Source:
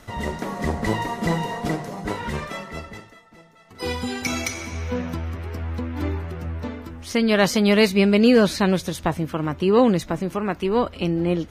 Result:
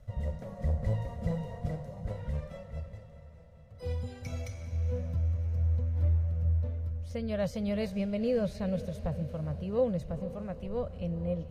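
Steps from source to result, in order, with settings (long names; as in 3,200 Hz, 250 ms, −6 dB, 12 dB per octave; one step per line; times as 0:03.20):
drawn EQ curve 120 Hz 0 dB, 370 Hz −29 dB, 530 Hz −5 dB, 860 Hz −23 dB
feedback delay with all-pass diffusion 460 ms, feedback 59%, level −14.5 dB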